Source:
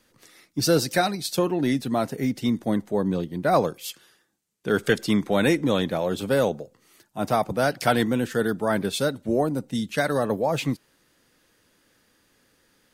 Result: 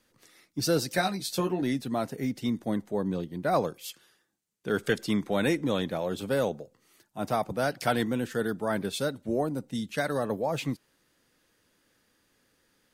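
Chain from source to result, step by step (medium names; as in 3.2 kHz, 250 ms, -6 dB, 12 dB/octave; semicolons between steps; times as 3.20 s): 0.96–1.62 s: doubling 16 ms -3.5 dB; trim -5.5 dB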